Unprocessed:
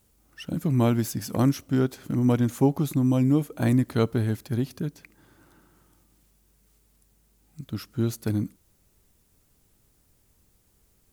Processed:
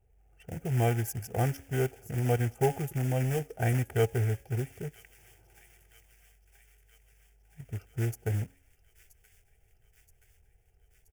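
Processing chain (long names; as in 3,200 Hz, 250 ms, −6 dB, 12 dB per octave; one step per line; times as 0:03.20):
adaptive Wiener filter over 25 samples
parametric band 3,100 Hz +3.5 dB 0.2 octaves
comb filter 2.6 ms, depth 63%
hum removal 274.9 Hz, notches 6
floating-point word with a short mantissa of 2 bits
phaser with its sweep stopped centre 1,100 Hz, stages 6
delay with a high-pass on its return 976 ms, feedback 63%, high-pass 2,300 Hz, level −15.5 dB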